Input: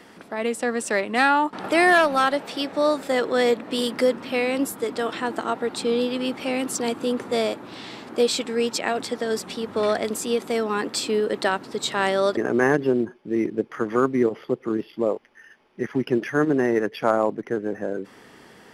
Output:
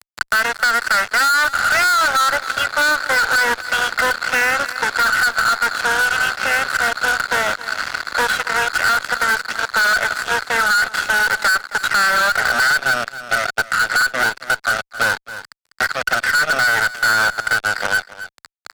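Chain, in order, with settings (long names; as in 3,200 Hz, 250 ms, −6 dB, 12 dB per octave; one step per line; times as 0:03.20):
lower of the sound and its delayed copy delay 1.5 ms
resonant band-pass 1,500 Hz, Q 18
fuzz pedal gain 50 dB, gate −57 dBFS
single-tap delay 268 ms −18.5 dB
multiband upward and downward compressor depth 70%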